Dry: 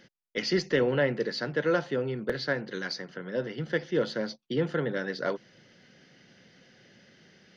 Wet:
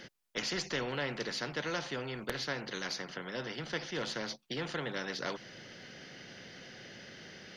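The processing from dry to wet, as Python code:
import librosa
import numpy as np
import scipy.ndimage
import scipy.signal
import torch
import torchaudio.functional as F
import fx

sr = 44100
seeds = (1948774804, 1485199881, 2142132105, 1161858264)

y = fx.spectral_comp(x, sr, ratio=2.0)
y = F.gain(torch.from_numpy(y), -5.0).numpy()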